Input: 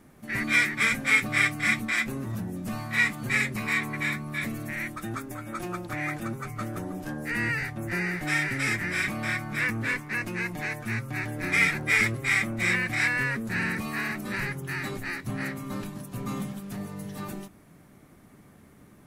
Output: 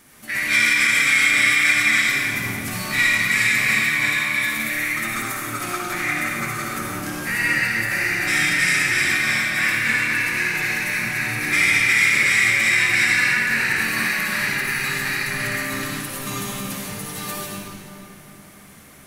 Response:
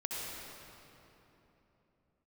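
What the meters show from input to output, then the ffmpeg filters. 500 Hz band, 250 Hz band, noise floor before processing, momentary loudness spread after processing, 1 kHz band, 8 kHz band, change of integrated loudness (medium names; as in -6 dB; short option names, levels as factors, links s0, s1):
+3.0 dB, +1.0 dB, -54 dBFS, 13 LU, +6.5 dB, +13.0 dB, +9.0 dB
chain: -filter_complex "[0:a]tiltshelf=f=1200:g=-9,asplit=2[s0][s1];[s1]acompressor=threshold=0.0251:ratio=6,volume=1.33[s2];[s0][s2]amix=inputs=2:normalize=0[s3];[1:a]atrim=start_sample=2205,asetrate=52920,aresample=44100[s4];[s3][s4]afir=irnorm=-1:irlink=0,alimiter=level_in=2.51:limit=0.891:release=50:level=0:latency=1,volume=0.501"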